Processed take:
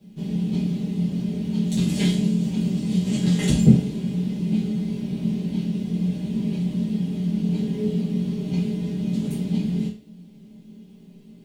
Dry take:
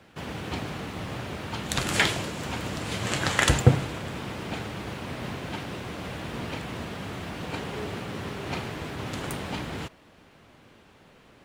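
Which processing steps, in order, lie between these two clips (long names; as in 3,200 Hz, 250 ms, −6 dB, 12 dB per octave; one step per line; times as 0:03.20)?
bit reduction 11 bits
drawn EQ curve 100 Hz 0 dB, 190 Hz +14 dB, 1,300 Hz −22 dB, 3,500 Hz −5 dB
convolution reverb RT60 0.35 s, pre-delay 5 ms, DRR −10 dB
level −9 dB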